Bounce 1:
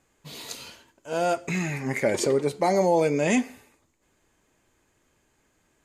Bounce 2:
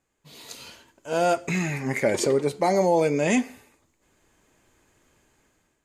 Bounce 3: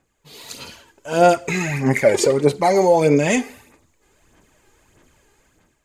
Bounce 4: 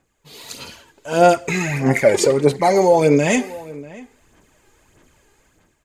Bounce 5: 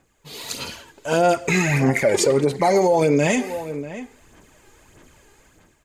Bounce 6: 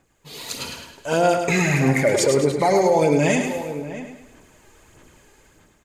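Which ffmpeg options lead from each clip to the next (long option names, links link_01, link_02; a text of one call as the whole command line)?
ffmpeg -i in.wav -af "dynaudnorm=framelen=260:gausssize=5:maxgain=13dB,volume=-8.5dB" out.wav
ffmpeg -i in.wav -af "aphaser=in_gain=1:out_gain=1:delay=2.5:decay=0.5:speed=1.6:type=sinusoidal,volume=4.5dB" out.wav
ffmpeg -i in.wav -filter_complex "[0:a]asplit=2[link_01][link_02];[link_02]adelay=641.4,volume=-19dB,highshelf=frequency=4000:gain=-14.4[link_03];[link_01][link_03]amix=inputs=2:normalize=0,volume=1dB" out.wav
ffmpeg -i in.wav -af "alimiter=limit=-13dB:level=0:latency=1:release=181,volume=4dB" out.wav
ffmpeg -i in.wav -af "aecho=1:1:105|210|315|420|525:0.473|0.199|0.0835|0.0351|0.0147,volume=-1dB" out.wav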